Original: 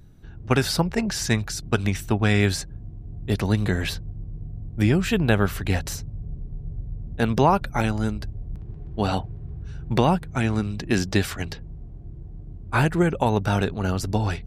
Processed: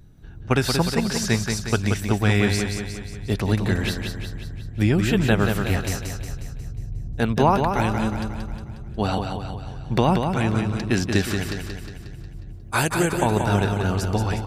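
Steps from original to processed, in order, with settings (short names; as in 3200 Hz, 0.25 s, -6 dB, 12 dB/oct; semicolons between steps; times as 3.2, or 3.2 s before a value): 12.53–13.13 tone controls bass -6 dB, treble +14 dB; feedback echo 0.18 s, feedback 54%, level -5.5 dB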